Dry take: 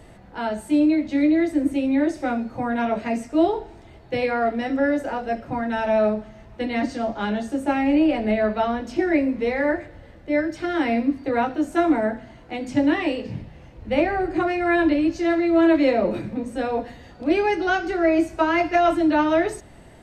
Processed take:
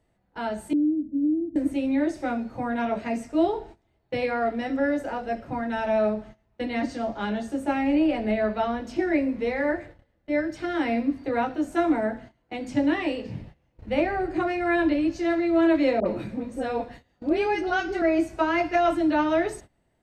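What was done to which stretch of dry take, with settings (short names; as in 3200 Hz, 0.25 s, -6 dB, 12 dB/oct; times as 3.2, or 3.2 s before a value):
0.73–1.56 ladder low-pass 340 Hz, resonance 55%
16–18.02 dispersion highs, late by 58 ms, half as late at 1000 Hz
whole clip: gate -39 dBFS, range -20 dB; gain -3.5 dB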